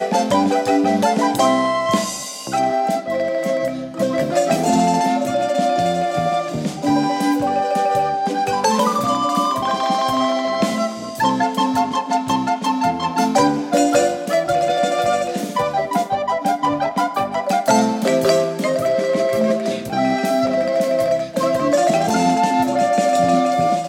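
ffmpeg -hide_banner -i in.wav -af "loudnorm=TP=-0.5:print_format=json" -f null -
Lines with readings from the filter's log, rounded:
"input_i" : "-18.2",
"input_tp" : "-2.5",
"input_lra" : "2.2",
"input_thresh" : "-28.2",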